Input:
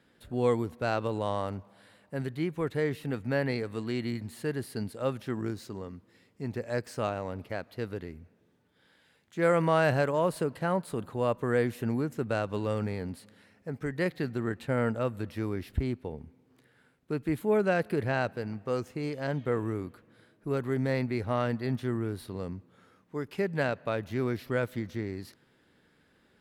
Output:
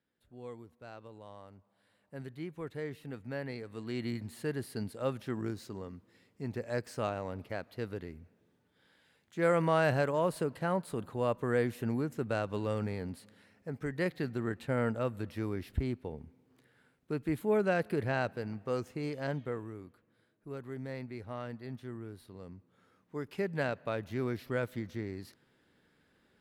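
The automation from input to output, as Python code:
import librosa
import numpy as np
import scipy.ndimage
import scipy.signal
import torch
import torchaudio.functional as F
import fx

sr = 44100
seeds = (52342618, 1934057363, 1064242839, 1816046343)

y = fx.gain(x, sr, db=fx.line((1.51, -19.5), (2.15, -10.0), (3.65, -10.0), (4.05, -3.0), (19.29, -3.0), (19.69, -12.0), (22.4, -12.0), (23.17, -4.0)))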